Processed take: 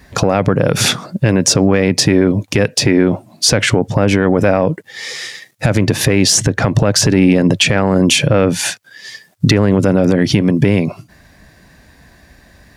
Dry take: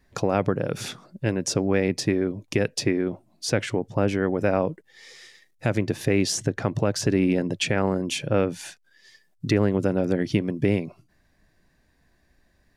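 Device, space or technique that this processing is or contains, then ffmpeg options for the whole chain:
mastering chain: -af "highpass=43,equalizer=frequency=360:width_type=o:width=0.59:gain=-4,acompressor=threshold=-26dB:ratio=2.5,asoftclip=type=tanh:threshold=-14.5dB,alimiter=level_in=22dB:limit=-1dB:release=50:level=0:latency=1,volume=-1dB"

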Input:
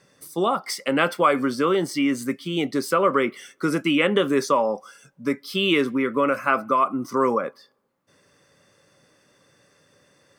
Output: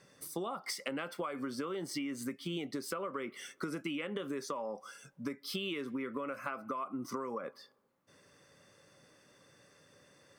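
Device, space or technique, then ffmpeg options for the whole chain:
serial compression, leveller first: -af "acompressor=threshold=-24dB:ratio=2.5,acompressor=threshold=-32dB:ratio=6,volume=-3.5dB"

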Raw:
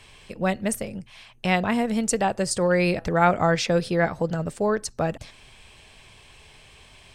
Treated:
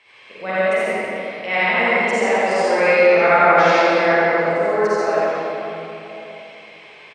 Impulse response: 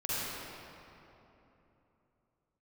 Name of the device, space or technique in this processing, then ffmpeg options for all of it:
station announcement: -filter_complex "[0:a]highpass=410,lowpass=3800,equalizer=frequency=2100:width_type=o:width=0.2:gain=11,aecho=1:1:84.55|268.2:0.891|0.251[link_01];[1:a]atrim=start_sample=2205[link_02];[link_01][link_02]afir=irnorm=-1:irlink=0,volume=-1dB"

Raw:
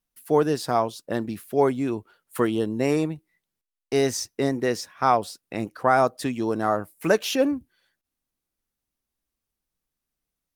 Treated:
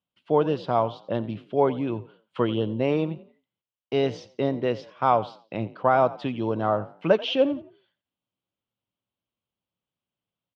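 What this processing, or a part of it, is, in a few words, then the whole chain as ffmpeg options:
frequency-shifting delay pedal into a guitar cabinet: -filter_complex "[0:a]asplit=4[link_01][link_02][link_03][link_04];[link_02]adelay=88,afreqshift=38,volume=-18dB[link_05];[link_03]adelay=176,afreqshift=76,volume=-27.9dB[link_06];[link_04]adelay=264,afreqshift=114,volume=-37.8dB[link_07];[link_01][link_05][link_06][link_07]amix=inputs=4:normalize=0,highpass=100,equalizer=frequency=110:width_type=q:width=4:gain=10,equalizer=frequency=180:width_type=q:width=4:gain=5,equalizer=frequency=570:width_type=q:width=4:gain=6,equalizer=frequency=960:width_type=q:width=4:gain=4,equalizer=frequency=1800:width_type=q:width=4:gain=-7,equalizer=frequency=3100:width_type=q:width=4:gain=9,lowpass=frequency=3600:width=0.5412,lowpass=frequency=3600:width=1.3066,volume=-3dB"

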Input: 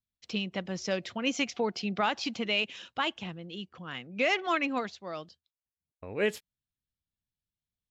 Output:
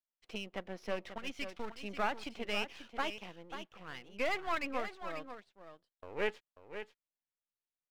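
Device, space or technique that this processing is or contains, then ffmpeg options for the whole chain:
crystal radio: -filter_complex "[0:a]highpass=340,lowpass=2500,aeval=exprs='if(lt(val(0),0),0.251*val(0),val(0))':channel_layout=same,asettb=1/sr,asplit=3[link_01][link_02][link_03];[link_01]atrim=end=1.184[link_04];[link_02]atrim=start=1.18:end=1.82,asetpts=PTS-STARTPTS,afade=type=in:duration=0.004:curve=qsin,afade=type=out:start_time=0.636:duration=0.004:curve=qsin,equalizer=frequency=580:width=0.67:gain=-10.5[link_05];[link_03]atrim=start=1.816[link_06];[link_04][link_05]acrossfade=duration=0.004:curve1=hsin:curve2=qsin[link_07];[link_07][link_06]acrossfade=duration=0.004:curve1=qsin:curve2=hsin,aecho=1:1:539:0.316,volume=-1.5dB"

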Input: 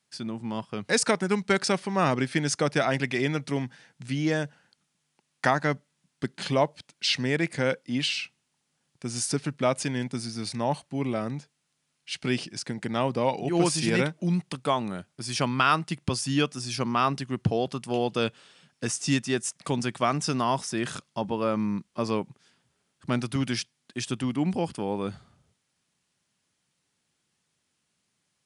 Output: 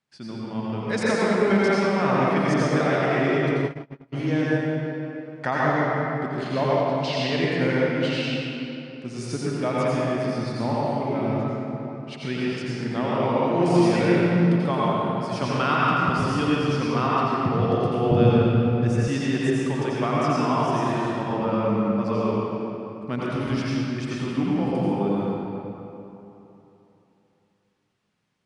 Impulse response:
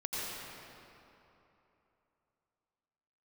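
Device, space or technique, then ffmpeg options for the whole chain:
swimming-pool hall: -filter_complex "[1:a]atrim=start_sample=2205[link_01];[0:a][link_01]afir=irnorm=-1:irlink=0,aemphasis=mode=reproduction:type=50fm,highshelf=frequency=3500:gain=-4,asplit=3[link_02][link_03][link_04];[link_02]afade=type=out:start_time=3.56:duration=0.02[link_05];[link_03]agate=range=-33dB:threshold=-22dB:ratio=16:detection=peak,afade=type=in:start_time=3.56:duration=0.02,afade=type=out:start_time=4.12:duration=0.02[link_06];[link_04]afade=type=in:start_time=4.12:duration=0.02[link_07];[link_05][link_06][link_07]amix=inputs=3:normalize=0,asettb=1/sr,asplit=3[link_08][link_09][link_10];[link_08]atrim=end=18.114[link_11];[link_09]atrim=start=18.11:end=19.08,asetpts=PTS-STARTPTS,afade=type=in:duration=0.004:curve=qsin,afade=type=out:start_time=0.966:duration=0.004:curve=qsin,bass=frequency=250:gain=14,treble=frequency=4000:gain=-3[link_12];[link_10]atrim=start=19.076[link_13];[link_11][link_12]acrossfade=duration=0.004:curve1=hsin:curve2=qsin[link_14];[link_14][link_13]acrossfade=duration=0.004:curve1=qsin:curve2=hsin"

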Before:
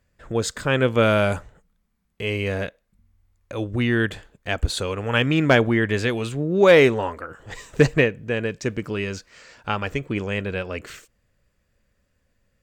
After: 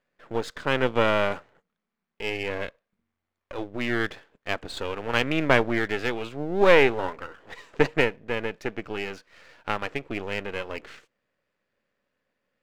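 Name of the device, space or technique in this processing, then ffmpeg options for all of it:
crystal radio: -af "highpass=270,lowpass=3400,aeval=exprs='if(lt(val(0),0),0.251*val(0),val(0))':channel_layout=same"

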